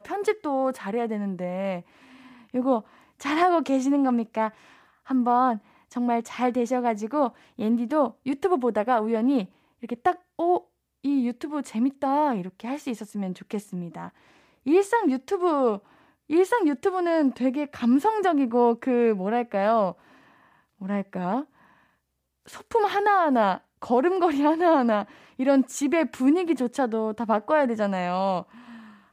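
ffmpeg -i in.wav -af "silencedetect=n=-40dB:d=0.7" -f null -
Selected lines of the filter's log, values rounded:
silence_start: 19.92
silence_end: 20.81 | silence_duration: 0.89
silence_start: 21.44
silence_end: 22.48 | silence_duration: 1.04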